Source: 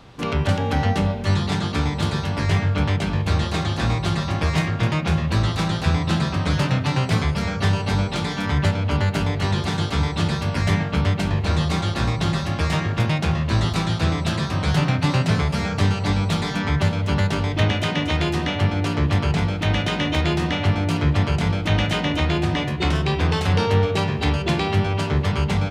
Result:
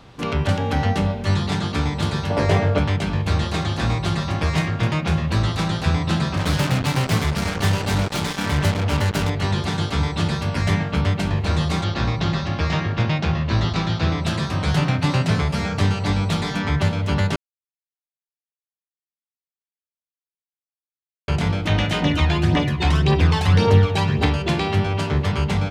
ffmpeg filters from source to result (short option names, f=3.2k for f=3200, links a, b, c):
-filter_complex "[0:a]asettb=1/sr,asplit=3[a][b][c];[a]atrim=end=2.304[d];[b]atrim=start=2.3:end=2.79,asetpts=PTS-STARTPTS,afade=t=in:d=0.004:c=qsin,afade=t=out:st=0.486:d=0.004:c=qsin,equalizer=f=540:t=o:w=1.3:g=12.5[e];[c]atrim=start=2.786[f];[d][e]acrossfade=d=0.004:c1=hsin:c2=qsin[g];[g][f]acrossfade=d=0.004:c1=qsin:c2=hsin,asettb=1/sr,asplit=3[h][i][j];[h]atrim=end=6.374[k];[i]atrim=start=6.37:end=9.3,asetpts=PTS-STARTPTS,afade=t=in:d=0.004:c=qsin,afade=t=out:st=2.926:d=0.004:c=qsin,acrusher=bits=3:mix=0:aa=0.5[l];[j]atrim=start=9.296[m];[k][l]acrossfade=d=0.004:c1=hsin:c2=qsin[n];[n][m]acrossfade=d=0.004:c1=qsin:c2=hsin,asettb=1/sr,asplit=3[o][p][q];[o]atrim=end=11.844[r];[p]atrim=start=11.84:end=14.24,asetpts=PTS-STARTPTS,afade=t=in:d=0.004:c=qsin,afade=t=out:st=2.396:d=0.004:c=qsin,lowpass=f=5.9k:w=0.5412,lowpass=f=5.9k:w=1.3066[s];[q]atrim=start=14.236[t];[r][s]acrossfade=d=0.004:c1=hsin:c2=qsin[u];[u][t]acrossfade=d=0.004:c1=qsin:c2=hsin,asettb=1/sr,asplit=3[v][w][x];[v]atrim=end=22.024[y];[w]atrim=start=22.02:end=24.26,asetpts=PTS-STARTPTS,afade=t=in:d=0.004:c=qsin,afade=t=out:st=2.236:d=0.004:c=qsin,aphaser=in_gain=1:out_gain=1:delay=1.3:decay=0.48:speed=1.8:type=triangular[z];[x]atrim=start=24.256[aa];[y][z]acrossfade=d=0.004:c1=hsin:c2=qsin[ab];[ab][aa]acrossfade=d=0.004:c1=qsin:c2=hsin,asplit=3[ac][ad][ae];[ac]atrim=end=17.36,asetpts=PTS-STARTPTS,afade=t=out:st=17.356:d=0.004:c=hsin[af];[ad]atrim=start=17.36:end=21.28,asetpts=PTS-STARTPTS,volume=0[ag];[ae]atrim=start=21.28,asetpts=PTS-STARTPTS,afade=t=in:d=0.004:c=hsin[ah];[af][ag][ah]concat=n=3:v=0:a=1"